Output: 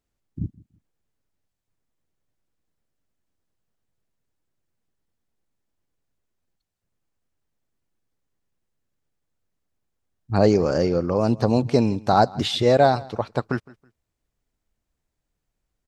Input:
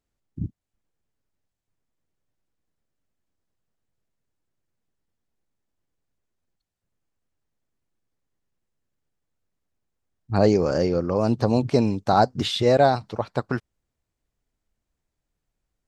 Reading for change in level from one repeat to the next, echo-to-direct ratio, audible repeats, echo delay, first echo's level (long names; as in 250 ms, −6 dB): −11.5 dB, −22.0 dB, 2, 162 ms, −22.5 dB